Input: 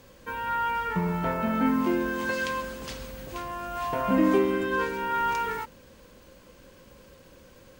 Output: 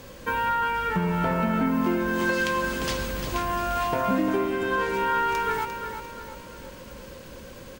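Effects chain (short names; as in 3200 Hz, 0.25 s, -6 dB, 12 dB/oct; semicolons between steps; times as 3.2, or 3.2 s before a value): tracing distortion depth 0.03 ms; compressor, threshold -31 dBFS, peak gain reduction 13 dB; on a send: feedback echo 0.349 s, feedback 44%, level -8.5 dB; on the sum: gain +9 dB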